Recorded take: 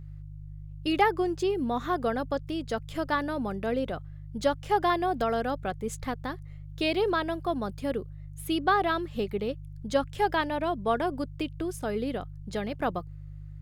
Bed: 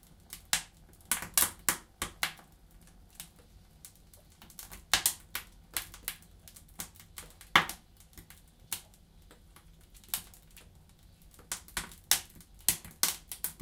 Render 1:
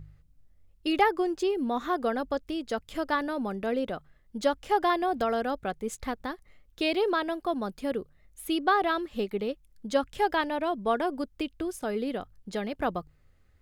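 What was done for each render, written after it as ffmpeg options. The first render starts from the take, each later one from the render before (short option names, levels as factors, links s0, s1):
-af "bandreject=f=50:t=h:w=4,bandreject=f=100:t=h:w=4,bandreject=f=150:t=h:w=4"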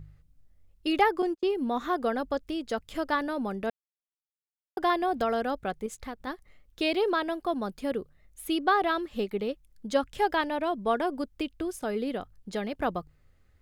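-filter_complex "[0:a]asettb=1/sr,asplit=3[s0][s1][s2];[s0]atrim=end=1.224[s3];[s1]atrim=start=1.22:end=1.66,asetpts=PTS-STARTPTS,afade=t=in:d=0.004:c=qsin,afade=t=out:st=0.436:d=0.004:c=qsin,agate=range=0.0126:threshold=0.0251:ratio=16:release=100:detection=peak[s4];[s2]atrim=start=1.656[s5];[s3][s4]acrossfade=d=0.004:c1=hsin:c2=qsin[s6];[s6][s5]acrossfade=d=0.004:c1=qsin:c2=hsin,asettb=1/sr,asplit=3[s7][s8][s9];[s7]atrim=end=5.864[s10];[s8]atrim=start=5.86:end=6.27,asetpts=PTS-STARTPTS,afade=t=in:d=0.004:c=qsin,afade=t=out:st=0.406:d=0.004:c=qsin,acompressor=threshold=0.00708:ratio=1.5:attack=3.2:release=140:knee=1:detection=peak[s11];[s9]atrim=start=6.266[s12];[s10][s11]acrossfade=d=0.004:c1=hsin:c2=qsin[s13];[s13][s12]acrossfade=d=0.004:c1=qsin:c2=hsin,asplit=3[s14][s15][s16];[s14]atrim=end=3.7,asetpts=PTS-STARTPTS,afade=t=out:st=3.696:d=0.004:c=hsin[s17];[s15]atrim=start=3.7:end=4.77,asetpts=PTS-STARTPTS,volume=0[s18];[s16]atrim=start=4.77,asetpts=PTS-STARTPTS,afade=t=in:d=0.004:c=hsin[s19];[s17][s18][s19]concat=n=3:v=0:a=1"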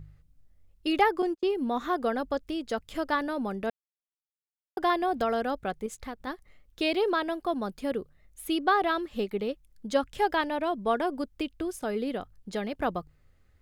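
-af anull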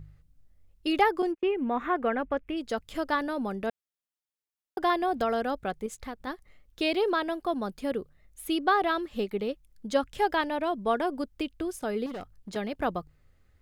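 -filter_complex "[0:a]asplit=3[s0][s1][s2];[s0]afade=t=out:st=1.31:d=0.02[s3];[s1]highshelf=f=3300:t=q:w=3:g=-11.5,afade=t=in:st=1.31:d=0.02,afade=t=out:st=2.56:d=0.02[s4];[s2]afade=t=in:st=2.56:d=0.02[s5];[s3][s4][s5]amix=inputs=3:normalize=0,asettb=1/sr,asplit=3[s6][s7][s8];[s6]atrim=end=12.064[s9];[s7]atrim=start=12.06:end=12.56,asetpts=PTS-STARTPTS,afade=t=in:d=0.004:c=qsin,afade=t=out:st=0.496:d=0.004:c=qsin,asoftclip=type=hard:threshold=0.02[s10];[s8]atrim=start=12.556[s11];[s9][s10]acrossfade=d=0.004:c1=hsin:c2=qsin[s12];[s12][s11]acrossfade=d=0.004:c1=qsin:c2=hsin"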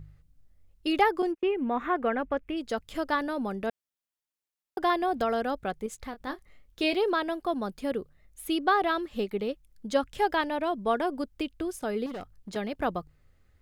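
-filter_complex "[0:a]asettb=1/sr,asplit=3[s0][s1][s2];[s0]atrim=end=6.104[s3];[s1]atrim=start=6.1:end=6.94,asetpts=PTS-STARTPTS,afade=t=in:d=0.004:c=qsin,afade=t=out:st=0.836:d=0.004:c=qsin,asplit=2[s4][s5];[s5]adelay=26,volume=0.316[s6];[s4][s6]amix=inputs=2:normalize=0,atrim=end_sample=37044[s7];[s2]atrim=start=6.936[s8];[s3][s7]acrossfade=d=0.004:c1=hsin:c2=qsin[s9];[s9][s8]acrossfade=d=0.004:c1=qsin:c2=hsin"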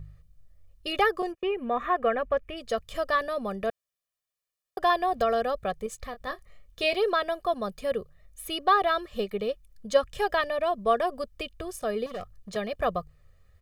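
-af "aecho=1:1:1.7:0.78"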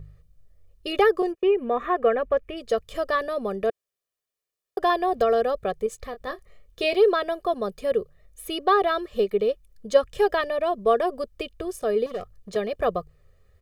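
-af "equalizer=f=410:t=o:w=0.76:g=9"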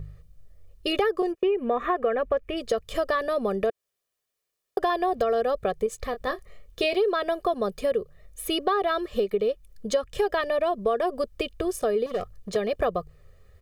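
-filter_complex "[0:a]asplit=2[s0][s1];[s1]alimiter=limit=0.168:level=0:latency=1,volume=0.75[s2];[s0][s2]amix=inputs=2:normalize=0,acompressor=threshold=0.0794:ratio=4"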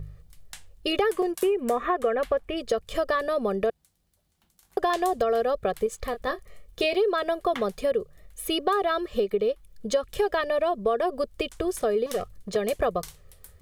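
-filter_complex "[1:a]volume=0.2[s0];[0:a][s0]amix=inputs=2:normalize=0"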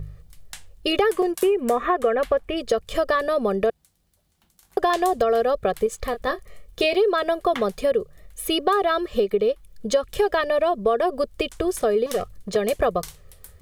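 -af "volume=1.58"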